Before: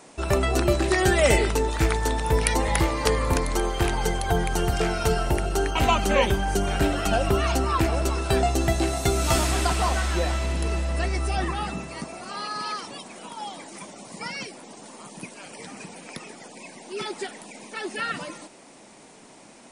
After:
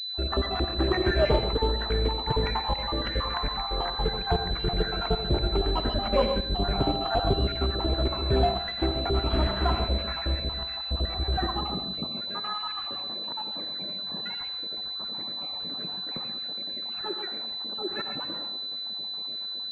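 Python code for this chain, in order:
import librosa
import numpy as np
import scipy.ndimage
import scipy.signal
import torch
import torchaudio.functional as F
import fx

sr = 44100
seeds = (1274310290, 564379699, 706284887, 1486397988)

p1 = fx.spec_dropout(x, sr, seeds[0], share_pct=64)
p2 = 10.0 ** (-13.5 / 20.0) * np.tanh(p1 / 10.0 ** (-13.5 / 20.0))
p3 = p2 + fx.echo_feedback(p2, sr, ms=86, feedback_pct=52, wet_db=-15.0, dry=0)
p4 = fx.rev_gated(p3, sr, seeds[1], gate_ms=160, shape='rising', drr_db=7.0)
y = fx.pwm(p4, sr, carrier_hz=4000.0)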